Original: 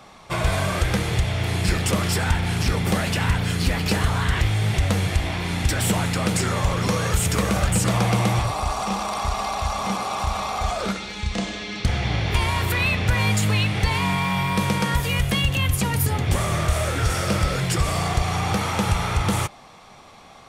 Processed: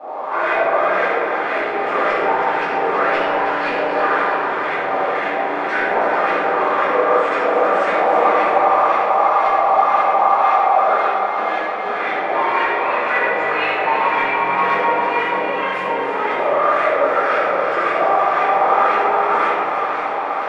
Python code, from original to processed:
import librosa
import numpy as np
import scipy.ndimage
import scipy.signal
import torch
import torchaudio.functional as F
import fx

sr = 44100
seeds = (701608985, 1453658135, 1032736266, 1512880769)

y = fx.delta_mod(x, sr, bps=64000, step_db=-26.5)
y = scipy.signal.sosfilt(scipy.signal.butter(4, 380.0, 'highpass', fs=sr, output='sos'), y)
y = fx.filter_lfo_lowpass(y, sr, shape='saw_up', hz=1.9, low_hz=600.0, high_hz=2100.0, q=2.3)
y = fx.echo_alternate(y, sr, ms=162, hz=1200.0, feedback_pct=85, wet_db=-6)
y = fx.room_shoebox(y, sr, seeds[0], volume_m3=1000.0, walls='mixed', distance_m=8.6)
y = F.gain(torch.from_numpy(y), -8.0).numpy()